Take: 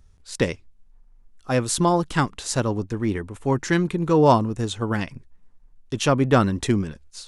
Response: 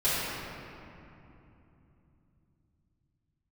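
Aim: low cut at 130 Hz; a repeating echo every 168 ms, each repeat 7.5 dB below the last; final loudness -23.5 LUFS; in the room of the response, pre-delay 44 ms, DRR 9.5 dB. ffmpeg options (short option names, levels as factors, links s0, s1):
-filter_complex "[0:a]highpass=130,aecho=1:1:168|336|504|672|840:0.422|0.177|0.0744|0.0312|0.0131,asplit=2[s0][s1];[1:a]atrim=start_sample=2205,adelay=44[s2];[s1][s2]afir=irnorm=-1:irlink=0,volume=0.075[s3];[s0][s3]amix=inputs=2:normalize=0,volume=0.841"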